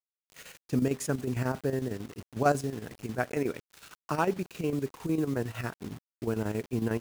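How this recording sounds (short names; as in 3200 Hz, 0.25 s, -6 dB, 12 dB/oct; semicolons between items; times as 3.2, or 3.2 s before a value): a quantiser's noise floor 8-bit, dither none; chopped level 11 Hz, depth 60%, duty 70%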